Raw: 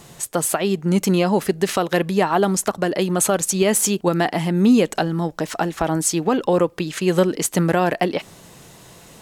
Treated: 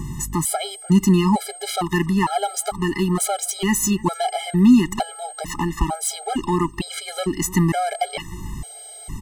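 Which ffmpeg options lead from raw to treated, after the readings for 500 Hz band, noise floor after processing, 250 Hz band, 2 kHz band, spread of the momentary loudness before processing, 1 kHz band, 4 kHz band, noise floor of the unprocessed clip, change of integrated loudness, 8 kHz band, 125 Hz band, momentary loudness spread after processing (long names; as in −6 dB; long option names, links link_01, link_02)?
−7.5 dB, −39 dBFS, +0.5 dB, −3.0 dB, 6 LU, −0.5 dB, −0.5 dB, −46 dBFS, −1.5 dB, −2.0 dB, +0.5 dB, 14 LU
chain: -filter_complex "[0:a]aeval=exprs='val(0)+0.02*sin(2*PI*8400*n/s)':channel_layout=same,asubboost=boost=6:cutoff=53,aeval=exprs='val(0)+0.00355*(sin(2*PI*50*n/s)+sin(2*PI*2*50*n/s)/2+sin(2*PI*3*50*n/s)/3+sin(2*PI*4*50*n/s)/4+sin(2*PI*5*50*n/s)/5)':channel_layout=same,acrossover=split=550[link_01][link_02];[link_01]acompressor=mode=upward:threshold=-25dB:ratio=2.5[link_03];[link_02]asoftclip=type=tanh:threshold=-18.5dB[link_04];[link_03][link_04]amix=inputs=2:normalize=0,aecho=1:1:1:0.89,asplit=2[link_05][link_06];[link_06]adelay=299,lowpass=frequency=4000:poles=1,volume=-21dB,asplit=2[link_07][link_08];[link_08]adelay=299,lowpass=frequency=4000:poles=1,volume=0.42,asplit=2[link_09][link_10];[link_10]adelay=299,lowpass=frequency=4000:poles=1,volume=0.42[link_11];[link_05][link_07][link_09][link_11]amix=inputs=4:normalize=0,afftfilt=real='re*gt(sin(2*PI*1.1*pts/sr)*(1-2*mod(floor(b*sr/1024/420),2)),0)':imag='im*gt(sin(2*PI*1.1*pts/sr)*(1-2*mod(floor(b*sr/1024/420),2)),0)':win_size=1024:overlap=0.75,volume=1.5dB"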